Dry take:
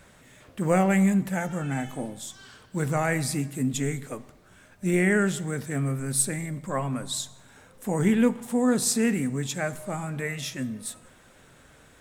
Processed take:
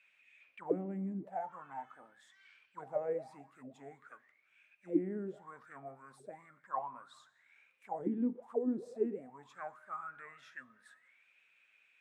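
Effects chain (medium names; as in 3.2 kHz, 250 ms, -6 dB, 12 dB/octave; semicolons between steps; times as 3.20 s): auto-wah 290–2600 Hz, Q 16, down, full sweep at -18 dBFS; trim +4.5 dB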